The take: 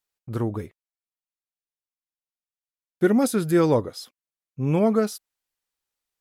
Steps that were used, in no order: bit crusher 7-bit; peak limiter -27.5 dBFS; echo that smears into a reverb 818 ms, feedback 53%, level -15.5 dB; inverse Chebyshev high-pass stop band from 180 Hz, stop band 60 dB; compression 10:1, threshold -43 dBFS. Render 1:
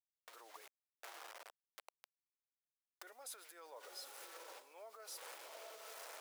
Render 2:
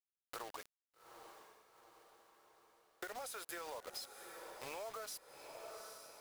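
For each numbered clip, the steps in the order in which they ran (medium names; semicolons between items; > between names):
echo that smears into a reverb > bit crusher > peak limiter > compression > inverse Chebyshev high-pass; inverse Chebyshev high-pass > peak limiter > bit crusher > echo that smears into a reverb > compression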